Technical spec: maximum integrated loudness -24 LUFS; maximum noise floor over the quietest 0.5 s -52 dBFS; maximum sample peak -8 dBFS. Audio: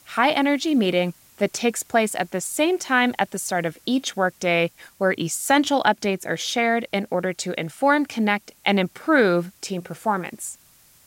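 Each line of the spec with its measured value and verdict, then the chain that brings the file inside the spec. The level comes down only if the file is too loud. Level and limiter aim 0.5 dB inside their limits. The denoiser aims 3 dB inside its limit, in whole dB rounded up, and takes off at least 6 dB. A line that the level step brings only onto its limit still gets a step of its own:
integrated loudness -22.5 LUFS: fail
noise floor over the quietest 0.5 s -55 dBFS: OK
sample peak -5.5 dBFS: fail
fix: gain -2 dB; limiter -8.5 dBFS

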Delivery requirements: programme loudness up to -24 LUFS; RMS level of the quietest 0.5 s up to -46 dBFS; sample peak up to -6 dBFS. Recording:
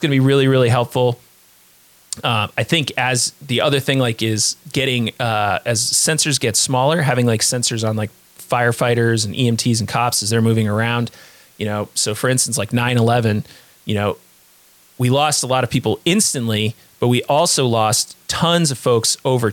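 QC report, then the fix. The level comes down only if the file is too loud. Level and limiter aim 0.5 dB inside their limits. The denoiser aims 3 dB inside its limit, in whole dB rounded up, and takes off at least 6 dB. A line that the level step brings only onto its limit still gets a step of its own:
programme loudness -17.0 LUFS: fail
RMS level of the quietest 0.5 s -51 dBFS: OK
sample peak -4.0 dBFS: fail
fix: gain -7.5 dB

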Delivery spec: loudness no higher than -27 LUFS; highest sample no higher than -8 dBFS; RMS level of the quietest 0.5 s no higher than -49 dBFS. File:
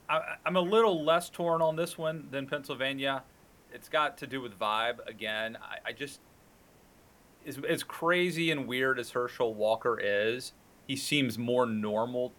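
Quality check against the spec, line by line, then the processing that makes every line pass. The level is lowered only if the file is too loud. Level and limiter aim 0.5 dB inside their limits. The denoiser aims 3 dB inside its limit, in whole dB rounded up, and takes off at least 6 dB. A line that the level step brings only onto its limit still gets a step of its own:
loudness -30.5 LUFS: OK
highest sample -14.0 dBFS: OK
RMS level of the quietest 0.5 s -60 dBFS: OK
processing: none

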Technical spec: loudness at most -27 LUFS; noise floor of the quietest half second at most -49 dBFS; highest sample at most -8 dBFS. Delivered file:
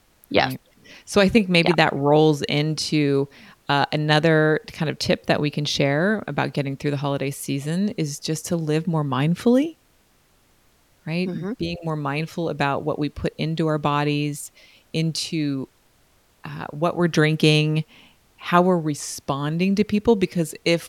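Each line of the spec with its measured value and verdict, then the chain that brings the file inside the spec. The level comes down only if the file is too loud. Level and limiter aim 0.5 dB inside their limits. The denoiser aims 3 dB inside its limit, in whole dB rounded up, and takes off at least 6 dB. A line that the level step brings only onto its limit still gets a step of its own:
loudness -22.0 LUFS: fail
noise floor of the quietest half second -60 dBFS: OK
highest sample -2.5 dBFS: fail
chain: gain -5.5 dB; limiter -8.5 dBFS

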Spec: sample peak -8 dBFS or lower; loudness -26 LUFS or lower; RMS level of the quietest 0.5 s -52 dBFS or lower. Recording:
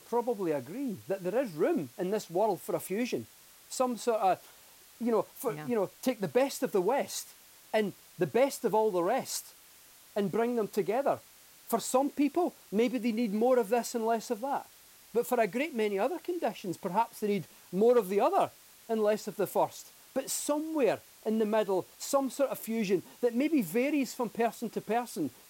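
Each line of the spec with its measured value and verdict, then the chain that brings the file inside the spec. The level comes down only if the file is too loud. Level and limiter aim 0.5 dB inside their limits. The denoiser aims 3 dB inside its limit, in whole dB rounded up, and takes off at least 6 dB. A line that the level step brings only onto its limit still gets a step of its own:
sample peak -14.0 dBFS: OK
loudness -31.0 LUFS: OK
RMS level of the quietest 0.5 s -57 dBFS: OK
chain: none

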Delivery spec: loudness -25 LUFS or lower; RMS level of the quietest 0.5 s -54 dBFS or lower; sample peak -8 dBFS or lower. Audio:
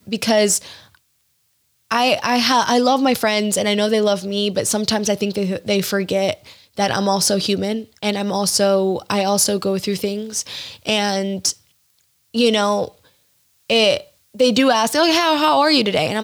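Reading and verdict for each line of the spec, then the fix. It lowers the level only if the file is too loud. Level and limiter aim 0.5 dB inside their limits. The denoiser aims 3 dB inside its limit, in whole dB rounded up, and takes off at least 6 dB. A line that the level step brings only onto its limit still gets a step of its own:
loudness -18.0 LUFS: fail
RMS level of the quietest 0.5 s -65 dBFS: OK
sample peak -5.5 dBFS: fail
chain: gain -7.5 dB

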